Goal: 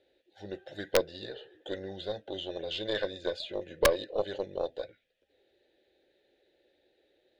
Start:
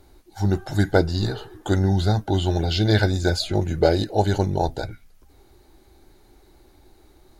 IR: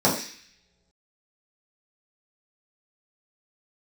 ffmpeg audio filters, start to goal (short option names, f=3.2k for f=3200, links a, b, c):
-filter_complex "[0:a]asplit=3[a][b][c];[a]bandpass=f=530:t=q:w=8,volume=0dB[d];[b]bandpass=f=1.84k:t=q:w=8,volume=-6dB[e];[c]bandpass=f=2.48k:t=q:w=8,volume=-9dB[f];[d][e][f]amix=inputs=3:normalize=0,equalizer=f=3.5k:w=2.7:g=13,aeval=exprs='0.251*(cos(1*acos(clip(val(0)/0.251,-1,1)))-cos(1*PI/2))+0.0631*(cos(2*acos(clip(val(0)/0.251,-1,1)))-cos(2*PI/2))+0.00355*(cos(6*acos(clip(val(0)/0.251,-1,1)))-cos(6*PI/2))':c=same,aeval=exprs='(mod(4.22*val(0)+1,2)-1)/4.22':c=same"